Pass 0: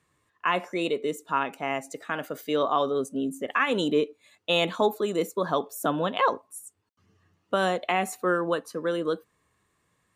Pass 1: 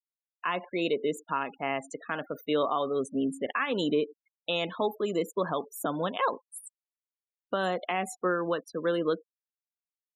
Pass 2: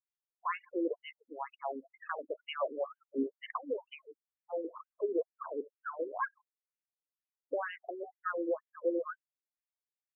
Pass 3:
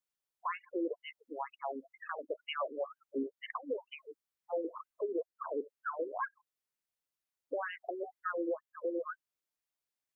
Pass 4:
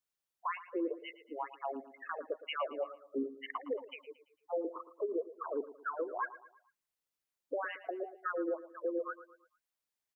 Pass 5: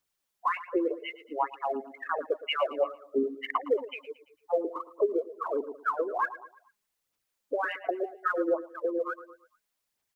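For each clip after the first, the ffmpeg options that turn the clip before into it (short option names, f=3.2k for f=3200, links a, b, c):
-af "alimiter=limit=-17dB:level=0:latency=1:release=397,afftfilt=real='re*gte(hypot(re,im),0.01)':imag='im*gte(hypot(re,im),0.01)':win_size=1024:overlap=0.75"
-af "afftfilt=real='re*between(b*sr/1024,350*pow(2200/350,0.5+0.5*sin(2*PI*2.1*pts/sr))/1.41,350*pow(2200/350,0.5+0.5*sin(2*PI*2.1*pts/sr))*1.41)':imag='im*between(b*sr/1024,350*pow(2200/350,0.5+0.5*sin(2*PI*2.1*pts/sr))/1.41,350*pow(2200/350,0.5+0.5*sin(2*PI*2.1*pts/sr))*1.41)':win_size=1024:overlap=0.75,volume=-1.5dB"
-af "alimiter=level_in=6dB:limit=-24dB:level=0:latency=1:release=360,volume=-6dB,volume=3dB"
-af "aecho=1:1:113|226|339|452:0.168|0.0722|0.031|0.0133"
-af "aphaser=in_gain=1:out_gain=1:delay=4.9:decay=0.42:speed=1.4:type=sinusoidal,volume=7dB"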